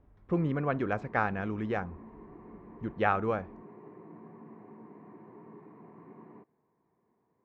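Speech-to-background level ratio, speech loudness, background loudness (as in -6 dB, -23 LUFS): 19.0 dB, -32.0 LUFS, -51.0 LUFS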